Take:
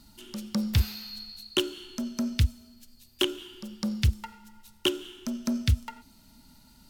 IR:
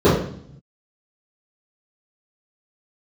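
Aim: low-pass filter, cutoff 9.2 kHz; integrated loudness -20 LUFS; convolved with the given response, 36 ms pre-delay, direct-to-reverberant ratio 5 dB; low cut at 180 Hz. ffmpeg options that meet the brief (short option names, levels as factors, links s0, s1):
-filter_complex "[0:a]highpass=180,lowpass=9200,asplit=2[s0][s1];[1:a]atrim=start_sample=2205,adelay=36[s2];[s1][s2]afir=irnorm=-1:irlink=0,volume=0.0266[s3];[s0][s3]amix=inputs=2:normalize=0,volume=3.16"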